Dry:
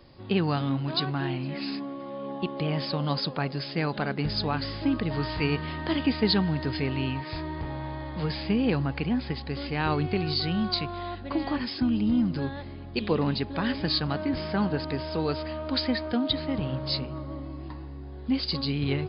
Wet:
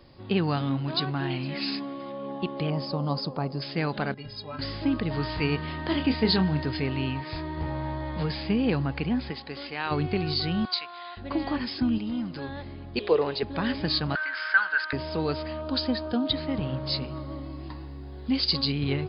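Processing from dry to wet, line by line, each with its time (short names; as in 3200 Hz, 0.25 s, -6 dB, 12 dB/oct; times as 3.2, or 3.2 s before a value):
1.3–2.12 high shelf 2000 Hz +7.5 dB
2.7–3.62 band shelf 2400 Hz -11.5 dB
4.14–4.59 metallic resonator 120 Hz, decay 0.25 s, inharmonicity 0.03
5.89–6.63 doubler 27 ms -8 dB
7.56–8.23 doubler 13 ms -4.5 dB
9.29–9.9 HPF 260 Hz -> 1000 Hz 6 dB/oct
10.65–11.17 HPF 970 Hz
11.98–12.49 low shelf 320 Hz -11 dB
12.99–13.43 resonant low shelf 310 Hz -9.5 dB, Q 3
14.15–14.93 resonant high-pass 1500 Hz, resonance Q 11
15.61–16.26 bell 2100 Hz -12.5 dB 0.37 oct
17.01–18.72 high shelf 3700 Hz +9.5 dB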